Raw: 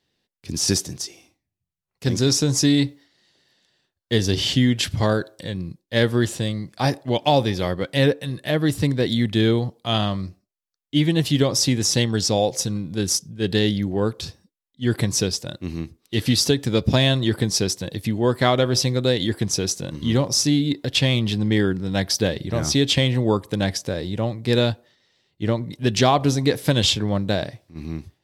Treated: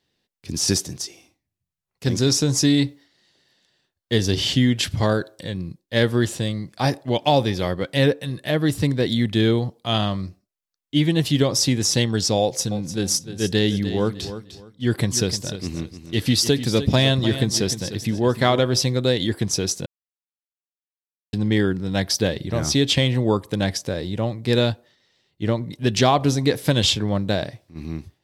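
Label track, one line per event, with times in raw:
12.410000	18.590000	repeating echo 302 ms, feedback 25%, level −11.5 dB
19.860000	21.330000	silence

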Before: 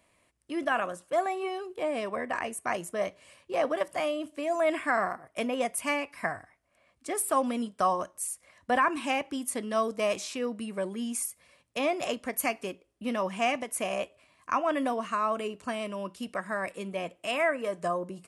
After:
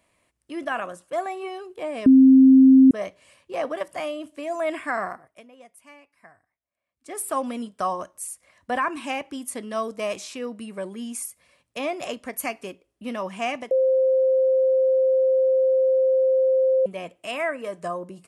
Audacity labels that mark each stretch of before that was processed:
2.060000	2.910000	beep over 264 Hz −8.5 dBFS
5.140000	7.230000	duck −19.5 dB, fades 0.28 s
13.710000	16.860000	beep over 524 Hz −16 dBFS

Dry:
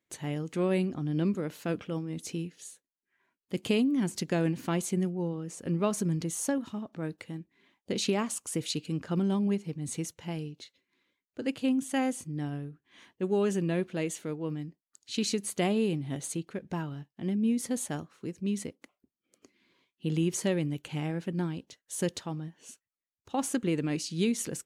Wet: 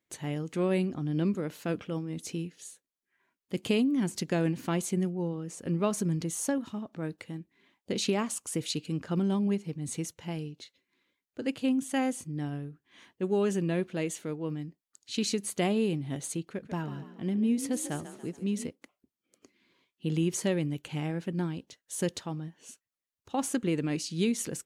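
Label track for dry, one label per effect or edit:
16.490000	18.690000	echo with shifted repeats 142 ms, feedback 46%, per repeat +38 Hz, level −12 dB

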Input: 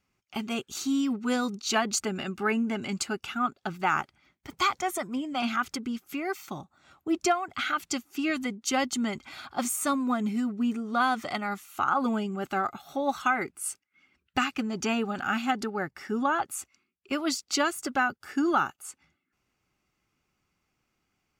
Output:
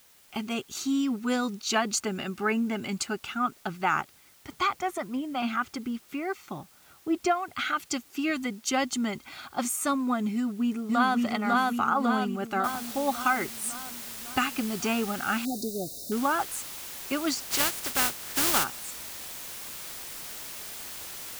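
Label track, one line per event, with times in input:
4.560000	7.360000	high-shelf EQ 4,500 Hz −10.5 dB
10.340000	11.170000	delay throw 550 ms, feedback 60%, level −0.5 dB
12.640000	12.640000	noise floor change −58 dB −40 dB
15.450000	16.120000	linear-phase brick-wall band-stop 750–3,600 Hz
17.440000	18.630000	compressing power law on the bin magnitudes exponent 0.37

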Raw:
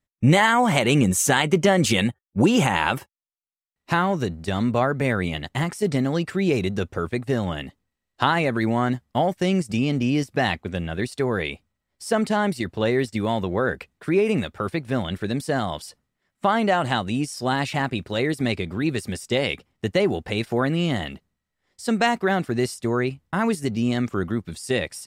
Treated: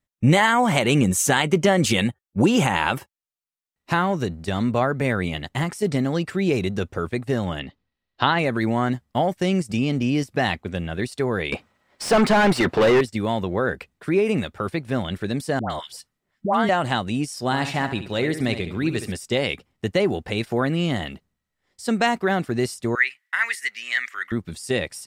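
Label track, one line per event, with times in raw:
7.590000	8.390000	high shelf with overshoot 6,000 Hz −13.5 dB, Q 1.5
11.520000	13.010000	mid-hump overdrive drive 30 dB, tone 1,500 Hz, clips at −8.5 dBFS
15.590000	16.690000	all-pass dispersion highs, late by 110 ms, half as late at 890 Hz
17.440000	19.120000	flutter between parallel walls apart 11.8 metres, dies away in 0.41 s
22.950000	24.320000	high-pass with resonance 1,900 Hz, resonance Q 8.4

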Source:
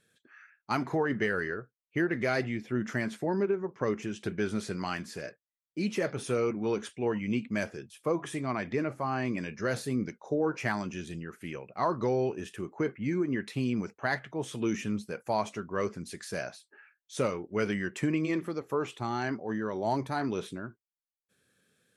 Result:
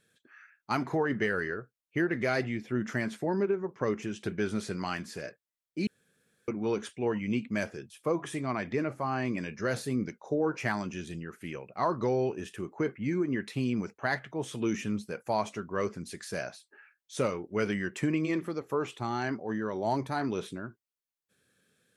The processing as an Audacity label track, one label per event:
5.870000	6.480000	fill with room tone

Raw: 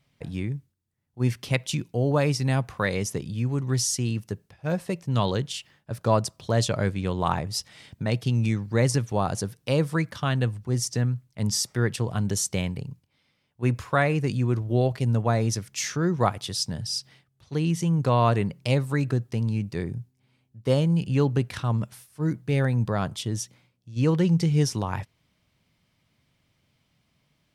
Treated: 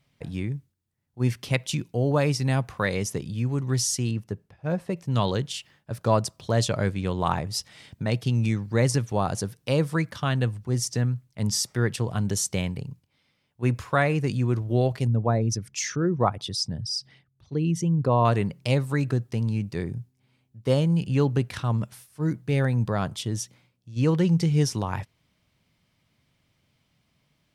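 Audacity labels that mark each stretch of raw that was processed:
4.110000	4.970000	high-shelf EQ 2,600 Hz −9.5 dB
15.070000	18.250000	spectral envelope exaggerated exponent 1.5

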